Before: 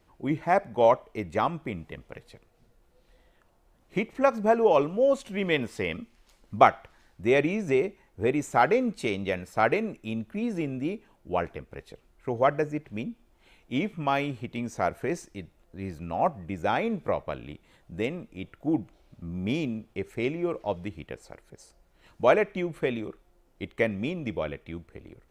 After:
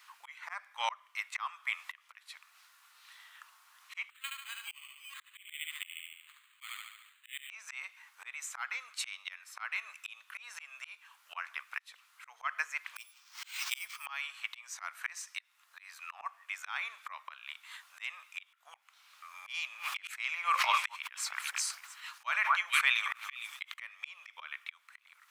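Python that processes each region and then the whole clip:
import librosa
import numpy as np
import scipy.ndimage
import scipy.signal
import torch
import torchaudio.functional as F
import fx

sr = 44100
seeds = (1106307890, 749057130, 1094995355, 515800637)

y = fx.chain(x, sr, fx.ladder_bandpass(hz=3700.0, resonance_pct=50),
    fx.echo_feedback(ms=72, feedback_pct=47, wet_db=-4.5),
    fx.resample_bad(factor=8, down='none', up='hold'), at=(4.1, 7.5))
y = fx.chain(y, sr, fx.peak_eq(hz=5700.0, db=14.0, octaves=0.79),
    fx.resample_bad(factor=4, down='none', up='hold'),
    fx.pre_swell(db_per_s=75.0), at=(12.96, 14.06))
y = fx.chain(y, sr, fx.echo_stepped(ms=227, hz=1100.0, octaves=1.4, feedback_pct=70, wet_db=-11.5),
    fx.sustainer(db_per_s=33.0), at=(19.49, 23.74))
y = scipy.signal.sosfilt(scipy.signal.ellip(4, 1.0, 70, 1100.0, 'highpass', fs=sr, output='sos'), y)
y = fx.rider(y, sr, range_db=5, speed_s=0.5)
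y = fx.auto_swell(y, sr, attack_ms=481.0)
y = y * 10.0 ** (10.0 / 20.0)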